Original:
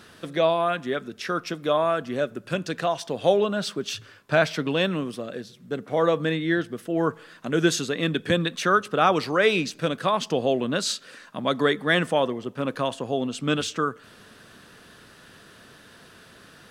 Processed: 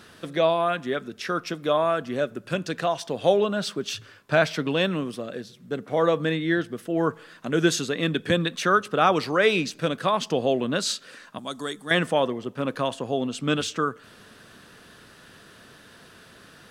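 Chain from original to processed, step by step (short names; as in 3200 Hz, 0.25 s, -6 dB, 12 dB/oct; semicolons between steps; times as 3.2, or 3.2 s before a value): 11.38–11.91 graphic EQ 125/250/500/1000/2000/4000/8000 Hz -11/-5/-11/-4/-12/-4/+11 dB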